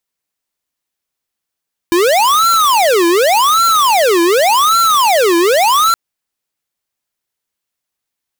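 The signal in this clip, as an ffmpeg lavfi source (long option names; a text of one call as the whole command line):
ffmpeg -f lavfi -i "aevalsrc='0.299*(2*lt(mod((848.5*t-511.5/(2*PI*0.87)*sin(2*PI*0.87*t)),1),0.5)-1)':duration=4.02:sample_rate=44100" out.wav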